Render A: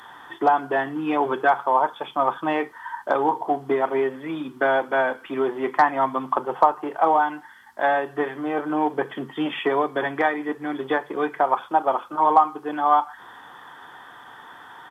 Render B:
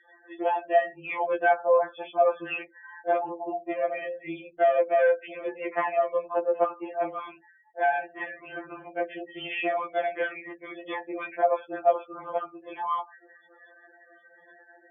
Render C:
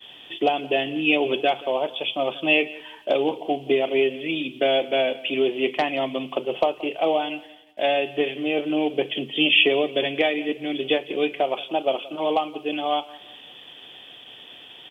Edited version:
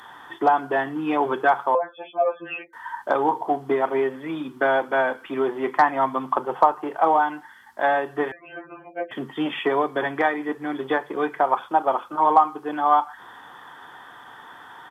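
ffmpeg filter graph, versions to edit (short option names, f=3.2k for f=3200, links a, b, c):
-filter_complex "[1:a]asplit=2[a][b];[0:a]asplit=3[c][d][e];[c]atrim=end=1.752[f];[a]atrim=start=1.748:end=2.732[g];[d]atrim=start=2.728:end=8.322[h];[b]atrim=start=8.318:end=9.112[i];[e]atrim=start=9.108[j];[f][g]acrossfade=d=0.004:c1=hsin:c2=hsin[k];[k][h]acrossfade=d=0.004:c1=hsin:c2=hsin[l];[l][i]acrossfade=d=0.004:c1=hsin:c2=hsin[m];[m][j]acrossfade=d=0.004:c1=hsin:c2=hsin"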